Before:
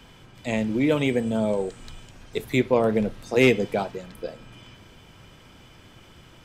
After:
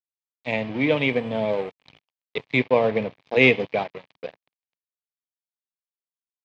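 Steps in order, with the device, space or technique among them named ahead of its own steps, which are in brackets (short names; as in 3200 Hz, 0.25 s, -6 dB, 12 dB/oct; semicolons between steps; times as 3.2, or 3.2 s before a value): blown loudspeaker (crossover distortion -36 dBFS; speaker cabinet 140–4100 Hz, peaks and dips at 210 Hz -7 dB, 350 Hz -9 dB, 1400 Hz -9 dB, 2300 Hz +5 dB); gain +4 dB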